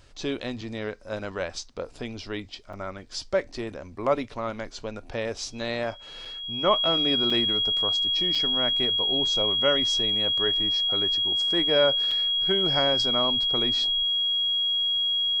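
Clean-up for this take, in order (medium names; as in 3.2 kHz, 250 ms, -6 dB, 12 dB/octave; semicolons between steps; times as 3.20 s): band-stop 3.3 kHz, Q 30; interpolate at 0.61/2.73/6.25/7.30/8.35/12.11 s, 4.7 ms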